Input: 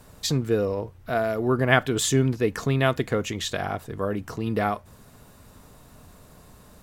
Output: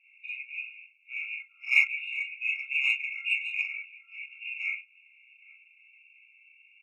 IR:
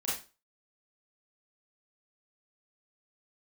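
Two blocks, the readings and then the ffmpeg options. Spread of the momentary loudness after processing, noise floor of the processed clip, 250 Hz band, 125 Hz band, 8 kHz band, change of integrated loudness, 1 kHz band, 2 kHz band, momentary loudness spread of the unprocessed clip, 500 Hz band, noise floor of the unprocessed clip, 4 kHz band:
16 LU, -62 dBFS, under -40 dB, under -40 dB, under -25 dB, -4.0 dB, under -30 dB, +2.5 dB, 9 LU, under -40 dB, -52 dBFS, -6.5 dB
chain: -filter_complex "[0:a]asuperpass=centerf=2200:order=20:qfactor=1.6,aemphasis=mode=production:type=75fm,asplit=2[s0][s1];[s1]adelay=816.3,volume=0.1,highshelf=f=4000:g=-18.4[s2];[s0][s2]amix=inputs=2:normalize=0[s3];[1:a]atrim=start_sample=2205,atrim=end_sample=3969[s4];[s3][s4]afir=irnorm=-1:irlink=0,asplit=2[s5][s6];[s6]asoftclip=type=tanh:threshold=0.0531,volume=0.251[s7];[s5][s7]amix=inputs=2:normalize=0,afftfilt=real='re*eq(mod(floor(b*sr/1024/710),2),1)':imag='im*eq(mod(floor(b*sr/1024/710),2),1)':win_size=1024:overlap=0.75,volume=1.68"

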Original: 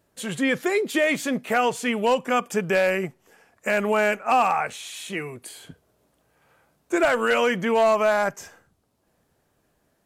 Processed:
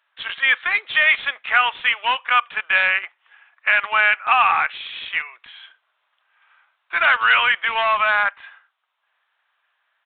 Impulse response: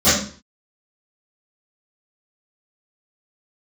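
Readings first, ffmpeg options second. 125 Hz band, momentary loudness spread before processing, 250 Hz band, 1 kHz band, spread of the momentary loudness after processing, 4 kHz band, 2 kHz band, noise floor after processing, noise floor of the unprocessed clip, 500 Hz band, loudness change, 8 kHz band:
under -15 dB, 12 LU, under -20 dB, +4.0 dB, 10 LU, +9.5 dB, +10.0 dB, -72 dBFS, -69 dBFS, -11.5 dB, +5.0 dB, under -40 dB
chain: -filter_complex "[0:a]highpass=f=1100:w=0.5412,highpass=f=1100:w=1.3066,asplit=2[s0][s1];[s1]acrusher=bits=4:mix=0:aa=0.000001,volume=0.355[s2];[s0][s2]amix=inputs=2:normalize=0,aresample=8000,aresample=44100,volume=2.37"

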